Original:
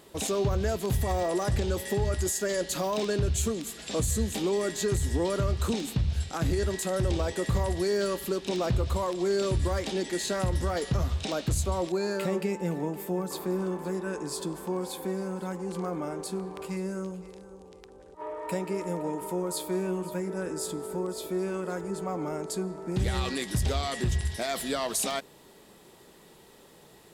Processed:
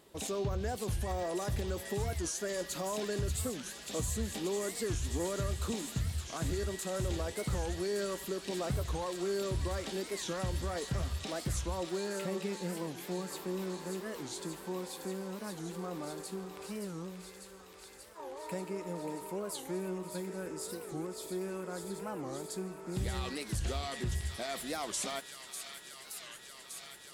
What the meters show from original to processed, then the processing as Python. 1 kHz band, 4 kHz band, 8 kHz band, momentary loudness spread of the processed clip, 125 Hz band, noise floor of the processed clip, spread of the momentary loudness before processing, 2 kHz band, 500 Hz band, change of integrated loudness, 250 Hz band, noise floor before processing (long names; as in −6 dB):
−7.0 dB, −5.0 dB, −5.0 dB, 8 LU, −7.5 dB, −51 dBFS, 6 LU, −6.0 dB, −7.5 dB, −7.5 dB, −7.5 dB, −54 dBFS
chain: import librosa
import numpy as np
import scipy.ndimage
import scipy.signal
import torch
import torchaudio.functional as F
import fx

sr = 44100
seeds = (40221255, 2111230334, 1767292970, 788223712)

p1 = x + fx.echo_wet_highpass(x, sr, ms=584, feedback_pct=85, hz=1600.0, wet_db=-7, dry=0)
p2 = fx.record_warp(p1, sr, rpm=45.0, depth_cents=250.0)
y = p2 * librosa.db_to_amplitude(-7.5)